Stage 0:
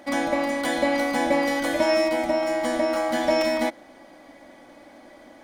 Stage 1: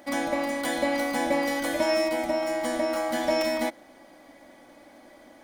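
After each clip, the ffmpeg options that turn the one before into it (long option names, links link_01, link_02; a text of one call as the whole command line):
ffmpeg -i in.wav -af "highshelf=frequency=9700:gain=9,volume=-3.5dB" out.wav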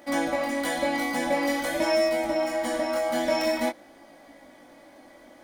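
ffmpeg -i in.wav -af "flanger=delay=17.5:depth=6.5:speed=0.48,volume=3.5dB" out.wav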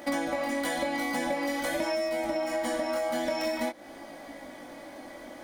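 ffmpeg -i in.wav -af "acompressor=threshold=-33dB:ratio=12,volume=6.5dB" out.wav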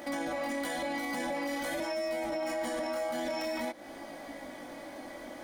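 ffmpeg -i in.wav -af "alimiter=level_in=2.5dB:limit=-24dB:level=0:latency=1:release=15,volume=-2.5dB" out.wav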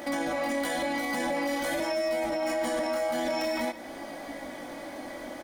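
ffmpeg -i in.wav -af "aecho=1:1:162:0.168,volume=4.5dB" out.wav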